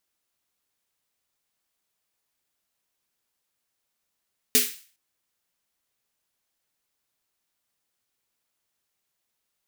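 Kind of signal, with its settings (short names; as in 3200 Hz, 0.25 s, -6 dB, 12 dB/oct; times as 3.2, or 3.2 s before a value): snare drum length 0.41 s, tones 250 Hz, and 430 Hz, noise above 1800 Hz, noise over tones 9.5 dB, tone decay 0.25 s, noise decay 0.42 s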